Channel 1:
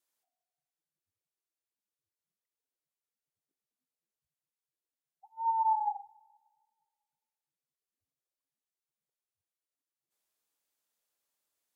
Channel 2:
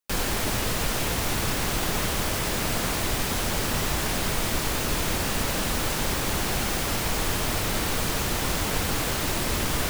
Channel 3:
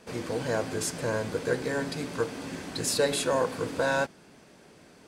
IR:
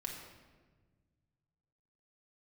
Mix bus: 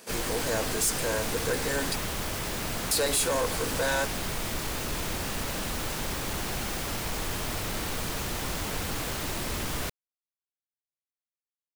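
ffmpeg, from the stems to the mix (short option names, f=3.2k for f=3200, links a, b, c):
-filter_complex "[1:a]volume=-5dB[a];[2:a]aemphasis=mode=production:type=bsi,volume=2.5dB,asplit=3[b][c][d];[b]atrim=end=1.96,asetpts=PTS-STARTPTS,afade=t=out:st=1.956:d=0.004:c=hsin[e];[c]atrim=start=1.96:end=2.91,asetpts=PTS-STARTPTS,volume=0[f];[d]atrim=start=2.91,asetpts=PTS-STARTPTS,afade=t=in:d=0.004:c=hsin[g];[e][f][g]concat=n=3:v=0:a=1[h];[a][h]amix=inputs=2:normalize=0,asoftclip=type=tanh:threshold=-21.5dB"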